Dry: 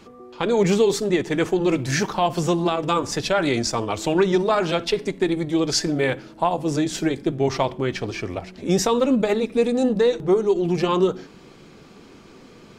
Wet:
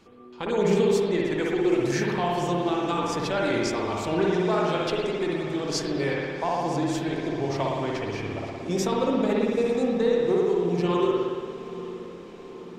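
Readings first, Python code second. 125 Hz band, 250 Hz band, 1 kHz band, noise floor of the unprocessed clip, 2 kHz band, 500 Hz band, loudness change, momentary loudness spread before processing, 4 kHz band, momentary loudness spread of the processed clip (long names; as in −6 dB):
−4.0 dB, −3.5 dB, −3.5 dB, −47 dBFS, −3.5 dB, −3.0 dB, −3.5 dB, 5 LU, −6.0 dB, 10 LU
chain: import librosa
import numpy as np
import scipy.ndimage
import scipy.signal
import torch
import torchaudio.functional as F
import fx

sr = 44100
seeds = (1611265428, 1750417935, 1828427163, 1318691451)

y = fx.echo_diffused(x, sr, ms=857, feedback_pct=62, wet_db=-16)
y = fx.rev_spring(y, sr, rt60_s=1.8, pass_ms=(57,), chirp_ms=65, drr_db=-3.0)
y = y * librosa.db_to_amplitude(-8.5)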